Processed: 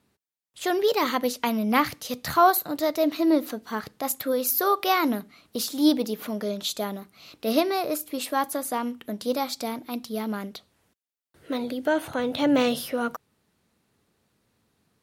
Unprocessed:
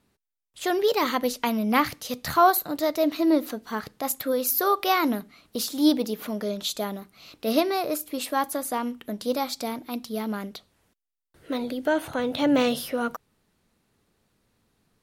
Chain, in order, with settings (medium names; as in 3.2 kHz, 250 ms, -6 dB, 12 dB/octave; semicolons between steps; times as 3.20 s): high-pass 62 Hz